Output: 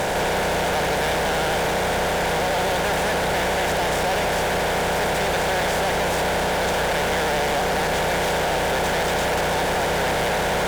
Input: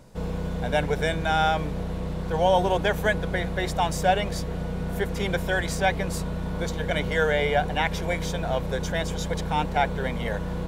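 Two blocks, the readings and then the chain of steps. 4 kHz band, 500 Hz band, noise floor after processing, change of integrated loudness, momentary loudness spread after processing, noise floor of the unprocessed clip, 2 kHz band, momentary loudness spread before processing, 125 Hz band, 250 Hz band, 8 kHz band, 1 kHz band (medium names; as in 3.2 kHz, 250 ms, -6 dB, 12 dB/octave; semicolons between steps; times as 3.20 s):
+7.5 dB, +4.5 dB, -22 dBFS, +4.5 dB, 0 LU, -31 dBFS, +6.0 dB, 8 LU, -1.5 dB, +0.5 dB, +10.0 dB, +5.0 dB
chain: spectral levelling over time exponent 0.2; vibrato 12 Hz 57 cents; fuzz box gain 22 dB, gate -30 dBFS; trim -6.5 dB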